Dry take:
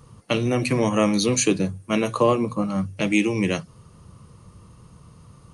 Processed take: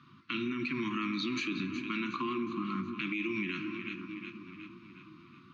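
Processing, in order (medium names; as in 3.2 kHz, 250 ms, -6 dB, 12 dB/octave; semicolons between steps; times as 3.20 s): Chebyshev band-stop 360–1000 Hz, order 4; cabinet simulation 210–4300 Hz, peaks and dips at 260 Hz +8 dB, 510 Hz +6 dB, 730 Hz -5 dB, 1.4 kHz +9 dB, 2.4 kHz +9 dB, 3.7 kHz +8 dB; two-band feedback delay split 1.2 kHz, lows 486 ms, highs 365 ms, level -15 dB; on a send at -11 dB: reverberation RT60 2.0 s, pre-delay 5 ms; on the sum: peak limiter -15.5 dBFS, peak gain reduction 12.5 dB; compression 2:1, threshold -29 dBFS, peak gain reduction 5.5 dB; trim -5.5 dB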